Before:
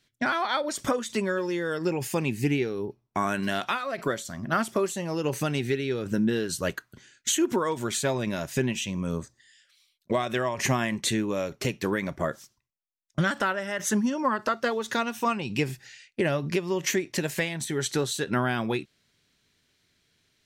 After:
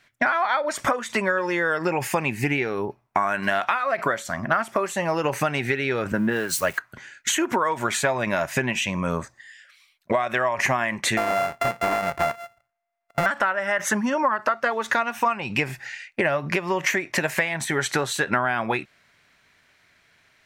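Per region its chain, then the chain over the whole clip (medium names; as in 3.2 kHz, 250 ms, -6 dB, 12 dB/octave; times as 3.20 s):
6.12–6.78 s: zero-crossing glitches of -31.5 dBFS + three bands expanded up and down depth 100%
11.17–13.26 s: sorted samples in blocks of 64 samples + hard clipper -23 dBFS
whole clip: high-order bell 1.2 kHz +11.5 dB 2.4 oct; compression 5:1, threshold -23 dBFS; trim +3.5 dB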